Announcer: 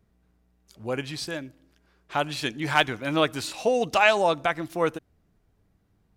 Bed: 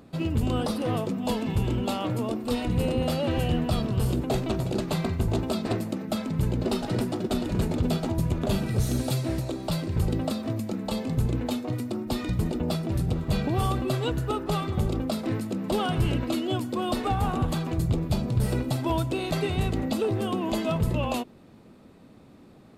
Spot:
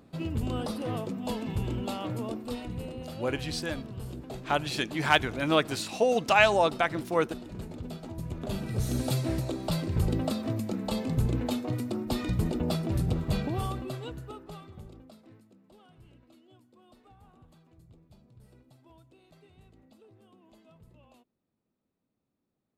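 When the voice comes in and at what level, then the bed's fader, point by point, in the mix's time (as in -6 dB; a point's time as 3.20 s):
2.35 s, -1.5 dB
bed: 2.32 s -5.5 dB
2.96 s -14 dB
7.97 s -14 dB
9.10 s -1.5 dB
13.21 s -1.5 dB
15.73 s -31.5 dB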